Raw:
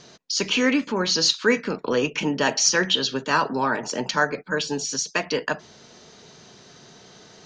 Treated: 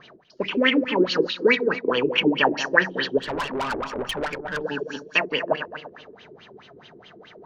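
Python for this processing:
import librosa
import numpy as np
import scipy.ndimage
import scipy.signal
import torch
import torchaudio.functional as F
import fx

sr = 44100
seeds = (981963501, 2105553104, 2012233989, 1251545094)

y = fx.reverse_delay_fb(x, sr, ms=121, feedback_pct=57, wet_db=-9)
y = fx.filter_lfo_lowpass(y, sr, shape='sine', hz=4.7, low_hz=340.0, high_hz=3200.0, q=6.8)
y = fx.tube_stage(y, sr, drive_db=19.0, bias=0.5, at=(3.18, 4.64))
y = y * 10.0 ** (-4.0 / 20.0)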